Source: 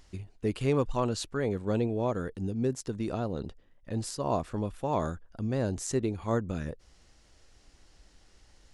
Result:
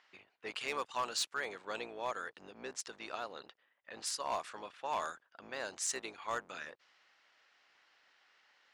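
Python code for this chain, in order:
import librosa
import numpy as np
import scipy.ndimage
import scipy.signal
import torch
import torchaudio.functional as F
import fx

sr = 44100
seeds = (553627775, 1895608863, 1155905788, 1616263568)

y = fx.octave_divider(x, sr, octaves=2, level_db=3.0)
y = scipy.signal.sosfilt(scipy.signal.butter(2, 1300.0, 'highpass', fs=sr, output='sos'), y)
y = fx.env_lowpass(y, sr, base_hz=2300.0, full_db=-37.0)
y = fx.high_shelf(y, sr, hz=7900.0, db=-6.0)
y = np.clip(y, -10.0 ** (-32.5 / 20.0), 10.0 ** (-32.5 / 20.0))
y = F.gain(torch.from_numpy(y), 4.5).numpy()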